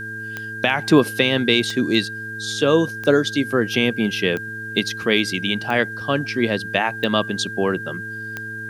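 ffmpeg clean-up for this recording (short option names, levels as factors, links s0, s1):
-af "adeclick=t=4,bandreject=f=109.5:t=h:w=4,bandreject=f=219:t=h:w=4,bandreject=f=328.5:t=h:w=4,bandreject=f=438:t=h:w=4,bandreject=f=1600:w=30,agate=range=0.0891:threshold=0.0708"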